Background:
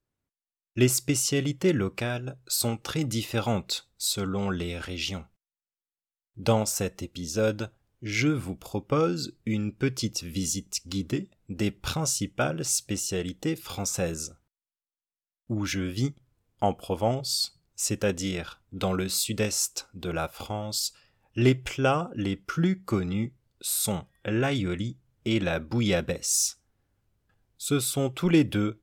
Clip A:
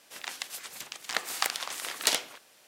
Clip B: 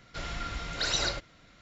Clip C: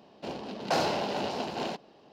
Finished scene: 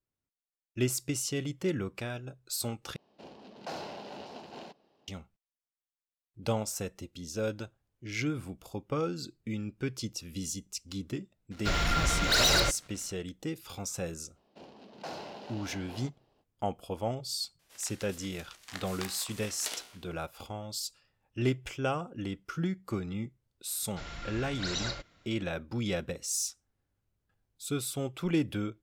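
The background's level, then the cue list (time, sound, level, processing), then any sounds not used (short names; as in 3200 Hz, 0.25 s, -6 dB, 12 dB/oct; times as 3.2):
background -7.5 dB
2.96 replace with C -12.5 dB
11.51 add B -2 dB + sample leveller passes 3
14.33 add C -14 dB, fades 0.05 s
17.59 add A -4.5 dB + resonator 61 Hz, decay 0.67 s, mix 70%
23.82 add B -6 dB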